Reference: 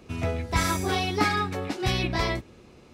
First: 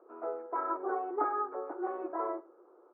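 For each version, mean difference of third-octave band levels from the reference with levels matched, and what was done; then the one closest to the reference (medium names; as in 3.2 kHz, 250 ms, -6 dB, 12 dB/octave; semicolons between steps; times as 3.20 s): 18.5 dB: Chebyshev band-pass 340–1400 Hz, order 4; on a send: delay 99 ms -24 dB; on the sum: trim -4 dB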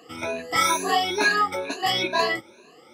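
6.5 dB: drifting ripple filter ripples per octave 1.5, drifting +2.2 Hz, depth 23 dB; high-pass 370 Hz 12 dB/octave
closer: second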